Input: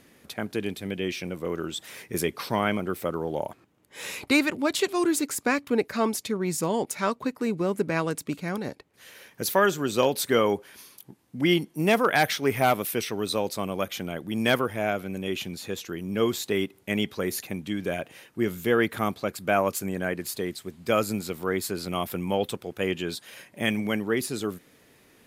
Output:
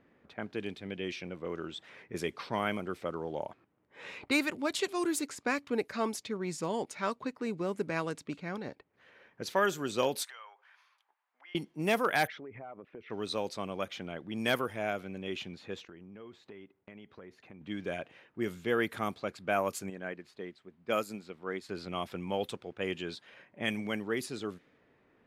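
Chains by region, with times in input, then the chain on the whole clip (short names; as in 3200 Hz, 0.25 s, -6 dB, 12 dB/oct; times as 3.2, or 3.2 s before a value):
10.23–11.55 compressor 20:1, threshold -30 dBFS + HPF 870 Hz 24 dB/oct
12.27–13.1 formant sharpening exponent 1.5 + LPF 1900 Hz + compressor 12:1, threshold -34 dBFS
15.85–17.61 gate -46 dBFS, range -9 dB + compressor 5:1, threshold -39 dBFS
19.9–21.69 bell 98 Hz -11 dB 0.37 oct + upward expander, over -34 dBFS
whole clip: low-pass opened by the level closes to 1600 Hz, open at -20 dBFS; low shelf 350 Hz -3.5 dB; gain -6 dB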